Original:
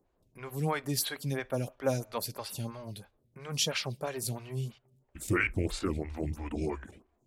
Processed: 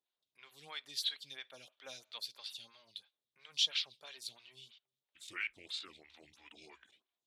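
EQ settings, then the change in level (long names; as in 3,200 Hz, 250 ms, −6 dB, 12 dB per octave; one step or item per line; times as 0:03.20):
resonant band-pass 3,600 Hz, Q 4.4
+5.0 dB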